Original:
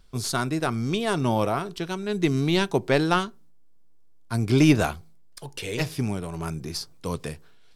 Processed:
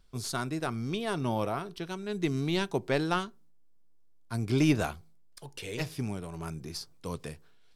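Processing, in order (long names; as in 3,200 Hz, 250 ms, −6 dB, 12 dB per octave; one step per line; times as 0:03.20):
0:00.72–0:01.86: parametric band 7,200 Hz −7.5 dB 0.3 octaves
level −7 dB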